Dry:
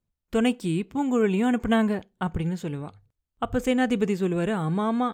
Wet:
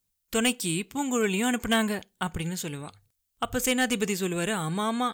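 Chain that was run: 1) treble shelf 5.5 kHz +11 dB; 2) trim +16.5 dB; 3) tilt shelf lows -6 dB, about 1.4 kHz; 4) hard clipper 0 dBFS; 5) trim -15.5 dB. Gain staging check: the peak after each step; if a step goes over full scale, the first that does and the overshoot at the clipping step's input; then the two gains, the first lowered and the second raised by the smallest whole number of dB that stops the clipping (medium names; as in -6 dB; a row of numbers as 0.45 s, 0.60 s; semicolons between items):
-9.0 dBFS, +7.5 dBFS, +7.5 dBFS, 0.0 dBFS, -15.5 dBFS; step 2, 7.5 dB; step 2 +8.5 dB, step 5 -7.5 dB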